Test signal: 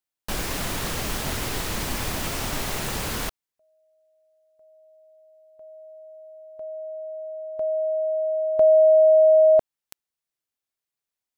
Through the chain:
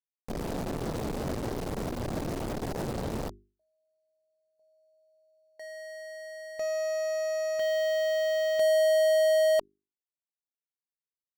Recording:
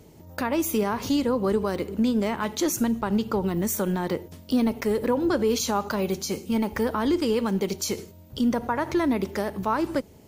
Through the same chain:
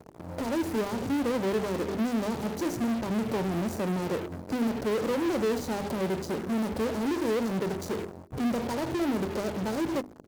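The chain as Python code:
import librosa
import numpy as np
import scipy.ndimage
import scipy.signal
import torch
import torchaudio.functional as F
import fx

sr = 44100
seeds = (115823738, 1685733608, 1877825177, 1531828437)

p1 = scipy.signal.medfilt(x, 41)
p2 = scipy.signal.sosfilt(scipy.signal.cheby1(4, 1.0, [980.0, 4100.0], 'bandstop', fs=sr, output='sos'), p1)
p3 = fx.fuzz(p2, sr, gain_db=46.0, gate_db=-48.0)
p4 = p2 + F.gain(torch.from_numpy(p3), -8.0).numpy()
p5 = fx.low_shelf(p4, sr, hz=84.0, db=-9.5)
p6 = fx.hum_notches(p5, sr, base_hz=50, count=8)
y = F.gain(torch.from_numpy(p6), -8.5).numpy()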